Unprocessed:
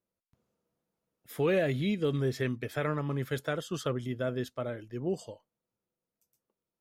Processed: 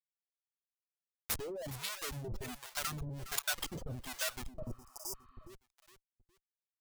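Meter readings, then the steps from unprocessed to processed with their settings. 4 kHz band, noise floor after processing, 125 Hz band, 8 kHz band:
+2.0 dB, under -85 dBFS, -11.5 dB, +9.5 dB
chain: per-bin expansion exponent 3; HPF 130 Hz 6 dB/oct; in parallel at +0.5 dB: compressor 4:1, threshold -44 dBFS, peak gain reduction 14 dB; on the sum: Schmitt trigger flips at -41.5 dBFS; reverb removal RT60 1.8 s; on a send: feedback echo 0.413 s, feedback 32%, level -13 dB; on the sum: harmonic tremolo 1.3 Hz, depth 100%, crossover 630 Hz; high shelf 3200 Hz +9.5 dB; spectral repair 4.65–5.47, 1000–4700 Hz before; bell 250 Hz -6 dB 2.8 oct; gain +6 dB

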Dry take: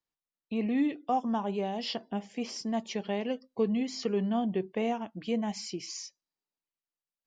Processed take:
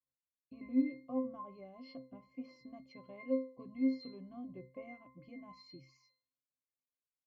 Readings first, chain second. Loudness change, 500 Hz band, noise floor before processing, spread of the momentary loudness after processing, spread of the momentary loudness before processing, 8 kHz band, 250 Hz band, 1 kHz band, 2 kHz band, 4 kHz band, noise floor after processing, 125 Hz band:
-7.5 dB, -11.5 dB, under -85 dBFS, 19 LU, 8 LU, n/a, -7.5 dB, -19.0 dB, -12.5 dB, -20.5 dB, under -85 dBFS, -18.0 dB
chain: octave resonator C, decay 0.4 s; wow and flutter 18 cents; gain +7 dB

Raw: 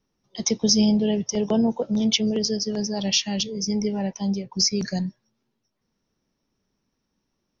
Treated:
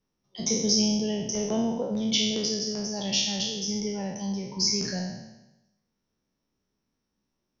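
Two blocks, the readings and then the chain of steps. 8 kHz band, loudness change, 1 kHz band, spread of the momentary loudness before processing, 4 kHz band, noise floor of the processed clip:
n/a, -3.5 dB, -3.5 dB, 8 LU, -1.5 dB, -81 dBFS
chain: spectral trails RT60 0.97 s; gain -7 dB

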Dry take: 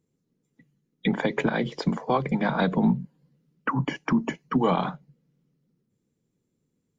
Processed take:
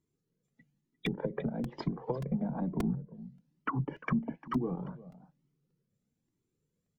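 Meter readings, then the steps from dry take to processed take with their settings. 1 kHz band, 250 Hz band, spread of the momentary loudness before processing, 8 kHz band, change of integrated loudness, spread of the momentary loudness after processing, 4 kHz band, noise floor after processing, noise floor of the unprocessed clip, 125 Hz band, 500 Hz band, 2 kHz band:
-13.0 dB, -8.5 dB, 7 LU, n/a, -9.0 dB, 14 LU, -12.5 dB, -83 dBFS, -77 dBFS, -6.5 dB, -10.5 dB, -13.0 dB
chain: treble ducked by the level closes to 340 Hz, closed at -20.5 dBFS; echo 0.35 s -18 dB; crackling interface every 0.58 s, samples 128, repeat, from 0.48; cascading flanger rising 1.1 Hz; gain -1.5 dB

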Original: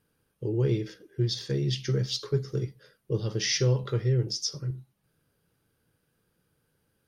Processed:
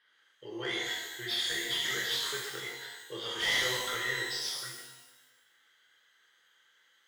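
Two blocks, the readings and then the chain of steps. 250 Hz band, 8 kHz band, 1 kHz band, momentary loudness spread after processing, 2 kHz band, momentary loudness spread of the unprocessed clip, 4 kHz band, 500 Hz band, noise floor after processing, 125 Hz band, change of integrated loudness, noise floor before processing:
-13.0 dB, n/a, +7.5 dB, 14 LU, +9.5 dB, 11 LU, +3.0 dB, -9.5 dB, -69 dBFS, -25.5 dB, -3.0 dB, -75 dBFS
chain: double band-pass 2500 Hz, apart 0.73 oct; overdrive pedal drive 26 dB, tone 2500 Hz, clips at -23.5 dBFS; shimmer reverb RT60 1.1 s, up +12 st, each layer -8 dB, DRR -2.5 dB

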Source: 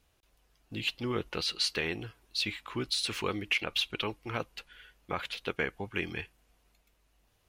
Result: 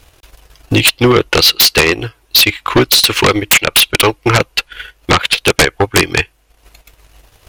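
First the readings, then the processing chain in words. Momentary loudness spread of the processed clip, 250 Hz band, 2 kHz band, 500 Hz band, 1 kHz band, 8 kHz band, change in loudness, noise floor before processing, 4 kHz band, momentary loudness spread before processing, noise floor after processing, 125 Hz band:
9 LU, +21.5 dB, +21.5 dB, +23.0 dB, +23.5 dB, +27.0 dB, +22.5 dB, -71 dBFS, +22.0 dB, 10 LU, -54 dBFS, +23.5 dB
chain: transient shaper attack +10 dB, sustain -12 dB; bell 200 Hz -13.5 dB 0.42 oct; sine folder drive 17 dB, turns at -7 dBFS; gain +3.5 dB

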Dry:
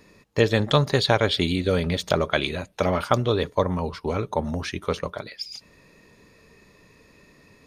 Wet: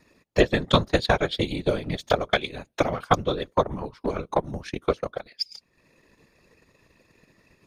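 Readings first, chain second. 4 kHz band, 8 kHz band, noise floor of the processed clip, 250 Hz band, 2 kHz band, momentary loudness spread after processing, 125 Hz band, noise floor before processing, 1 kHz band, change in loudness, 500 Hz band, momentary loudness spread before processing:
-2.5 dB, -4.0 dB, -69 dBFS, -2.0 dB, -1.0 dB, 10 LU, -4.5 dB, -56 dBFS, +0.5 dB, -2.0 dB, -1.5 dB, 12 LU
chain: transient shaper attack +10 dB, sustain -8 dB; whisperiser; gain -6.5 dB

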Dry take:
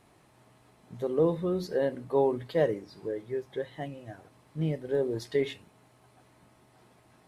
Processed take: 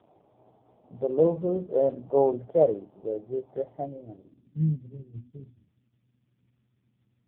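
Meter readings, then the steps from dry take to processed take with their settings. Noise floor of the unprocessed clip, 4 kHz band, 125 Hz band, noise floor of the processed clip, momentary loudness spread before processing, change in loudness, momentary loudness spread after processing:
-62 dBFS, under -20 dB, +3.5 dB, -73 dBFS, 14 LU, +3.5 dB, 19 LU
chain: wow and flutter 19 cents; low-pass sweep 700 Hz -> 100 Hz, 3.78–5.03; AMR-NB 4.75 kbps 8000 Hz

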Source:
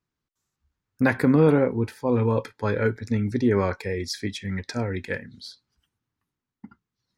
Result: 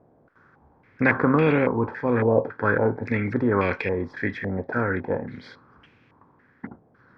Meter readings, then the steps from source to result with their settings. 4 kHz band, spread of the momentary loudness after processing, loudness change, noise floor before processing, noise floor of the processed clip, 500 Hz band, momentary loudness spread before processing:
-9.0 dB, 19 LU, +0.5 dB, under -85 dBFS, -60 dBFS, +1.0 dB, 13 LU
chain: per-bin compression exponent 0.6; stepped low-pass 3.6 Hz 690–2600 Hz; gain -4 dB

